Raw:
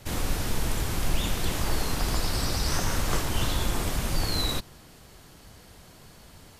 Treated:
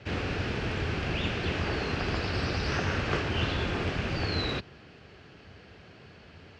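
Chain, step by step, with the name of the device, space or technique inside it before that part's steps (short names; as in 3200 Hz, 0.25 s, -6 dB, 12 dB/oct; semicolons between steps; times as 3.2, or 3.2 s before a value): guitar cabinet (speaker cabinet 79–4300 Hz, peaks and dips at 86 Hz +5 dB, 410 Hz +5 dB, 970 Hz -5 dB, 1600 Hz +4 dB, 2600 Hz +6 dB, 3700 Hz -5 dB)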